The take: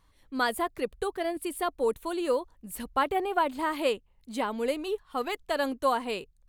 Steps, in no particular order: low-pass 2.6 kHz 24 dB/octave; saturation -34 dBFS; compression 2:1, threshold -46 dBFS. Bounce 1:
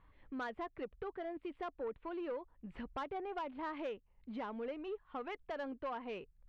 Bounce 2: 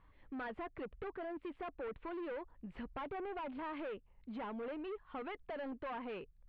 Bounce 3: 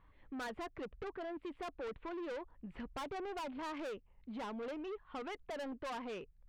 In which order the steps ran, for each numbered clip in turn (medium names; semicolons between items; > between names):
low-pass > compression > saturation; saturation > low-pass > compression; low-pass > saturation > compression